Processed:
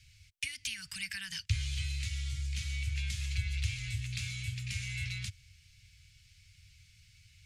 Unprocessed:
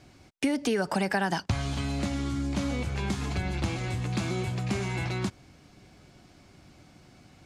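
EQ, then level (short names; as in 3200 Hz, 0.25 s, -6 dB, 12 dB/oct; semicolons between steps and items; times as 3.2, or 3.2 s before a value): elliptic band-stop 100–2300 Hz, stop band 80 dB; 0.0 dB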